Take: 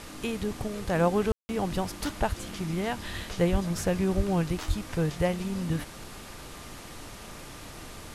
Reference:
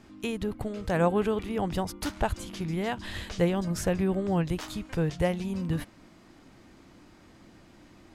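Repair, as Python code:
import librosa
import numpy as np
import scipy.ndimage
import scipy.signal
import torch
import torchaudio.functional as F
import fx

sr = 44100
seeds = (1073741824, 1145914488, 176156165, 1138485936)

y = fx.notch(x, sr, hz=1200.0, q=30.0)
y = fx.fix_deplosive(y, sr, at_s=(1.29, 3.51, 4.16, 4.67))
y = fx.fix_ambience(y, sr, seeds[0], print_start_s=7.15, print_end_s=7.65, start_s=1.32, end_s=1.49)
y = fx.noise_reduce(y, sr, print_start_s=7.15, print_end_s=7.65, reduce_db=11.0)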